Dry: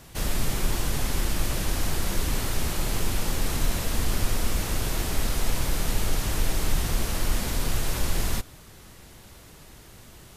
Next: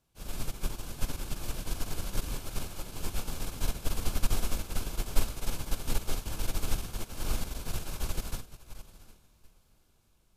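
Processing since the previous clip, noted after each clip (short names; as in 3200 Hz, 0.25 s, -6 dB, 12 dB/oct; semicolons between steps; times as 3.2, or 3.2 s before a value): notch 1900 Hz, Q 5.7; diffused feedback echo 0.765 s, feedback 46%, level -6 dB; upward expander 2.5:1, over -33 dBFS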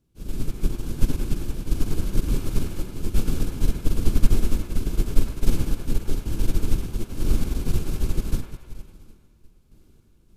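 resonant low shelf 490 Hz +11 dB, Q 1.5; random-step tremolo; band-limited delay 0.102 s, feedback 58%, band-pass 1300 Hz, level -5 dB; gain +3 dB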